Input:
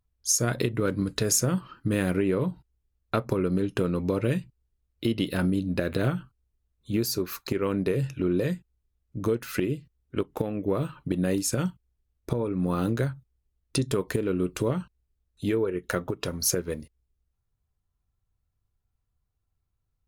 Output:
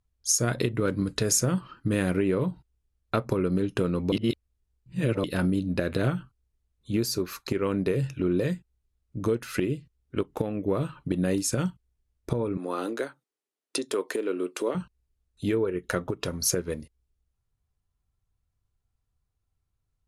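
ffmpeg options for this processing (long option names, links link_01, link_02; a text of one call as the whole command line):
ffmpeg -i in.wav -filter_complex "[0:a]asettb=1/sr,asplit=3[link_01][link_02][link_03];[link_01]atrim=end=12.574[link_04];[link_02]atrim=start=12.57:end=14.75,asetpts=PTS-STARTPTS,afade=type=in:duration=0.004:curve=qsin,afade=type=out:start_time=2.176:duration=0.004:curve=qsin,highpass=frequency=300:width=0.5412,highpass=frequency=300:width=1.3066[link_05];[link_03]atrim=start=14.746[link_06];[link_04][link_05]acrossfade=duration=0.004:curve1=hsin:curve2=qsin[link_07];[link_07][link_06]acrossfade=duration=0.004:curve1=qsin:curve2=hsin,asplit=3[link_08][link_09][link_10];[link_08]atrim=end=4.122[link_11];[link_09]atrim=start=4.118:end=5.242,asetpts=PTS-STARTPTS,areverse[link_12];[link_10]atrim=start=5.238[link_13];[link_11][link_12]acrossfade=duration=0.004:curve1=hsin:curve2=hsin[link_14];[link_14][link_13]acrossfade=duration=0.004:curve1=hsin:curve2=hsin,lowpass=frequency=12000:width=0.5412,lowpass=frequency=12000:width=1.3066" out.wav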